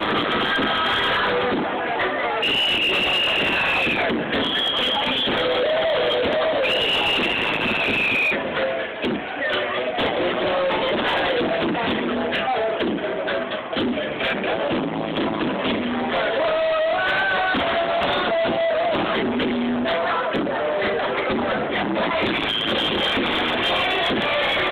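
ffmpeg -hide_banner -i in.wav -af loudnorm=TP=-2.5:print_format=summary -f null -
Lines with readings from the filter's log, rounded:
Input Integrated:    -20.7 LUFS
Input True Peak:     -14.7 dBTP
Input LRA:             3.3 LU
Input Threshold:     -30.7 LUFS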